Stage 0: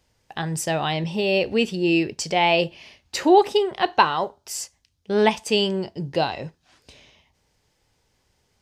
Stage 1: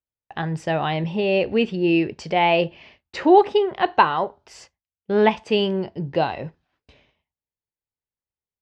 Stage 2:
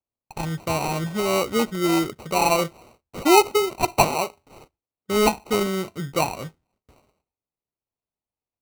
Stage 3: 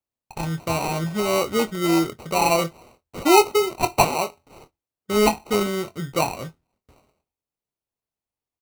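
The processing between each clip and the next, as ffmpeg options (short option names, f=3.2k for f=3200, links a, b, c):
-af "lowpass=2.6k,agate=range=-33dB:threshold=-47dB:ratio=3:detection=peak,volume=1.5dB"
-af "acrusher=samples=26:mix=1:aa=0.000001,volume=-2dB"
-filter_complex "[0:a]asplit=2[a][b];[b]adelay=24,volume=-11dB[c];[a][c]amix=inputs=2:normalize=0"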